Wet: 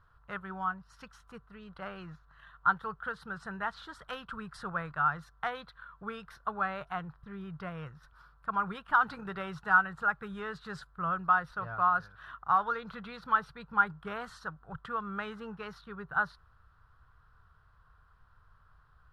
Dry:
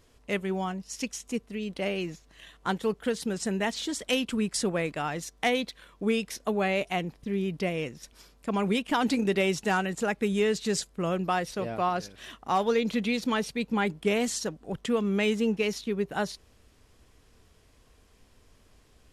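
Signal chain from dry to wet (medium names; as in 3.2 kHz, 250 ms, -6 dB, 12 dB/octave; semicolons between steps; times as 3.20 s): FFT filter 150 Hz 0 dB, 250 Hz -21 dB, 600 Hz -11 dB, 1.4 kHz +13 dB, 2.2 kHz -16 dB, 4.1 kHz -12 dB, 6.9 kHz -29 dB, 10 kHz -22 dB; trim -2 dB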